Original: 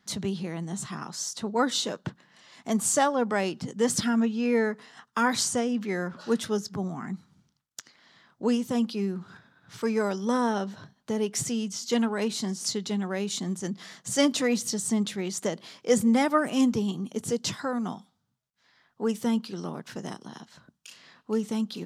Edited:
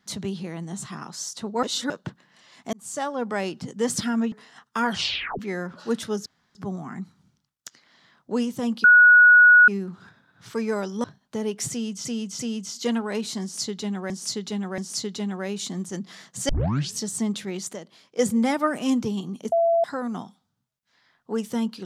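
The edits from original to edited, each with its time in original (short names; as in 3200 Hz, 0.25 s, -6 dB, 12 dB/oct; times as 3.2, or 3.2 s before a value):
1.63–1.9 reverse
2.73–3.59 fade in equal-power
4.32–4.73 cut
5.25 tape stop 0.55 s
6.67 insert room tone 0.29 s
8.96 add tone 1460 Hz -9 dBFS 0.84 s
10.32–10.79 cut
11.46–11.8 loop, 3 plays
12.49–13.17 loop, 3 plays
14.2 tape start 0.49 s
15.44–15.9 gain -8 dB
17.23–17.55 bleep 672 Hz -16.5 dBFS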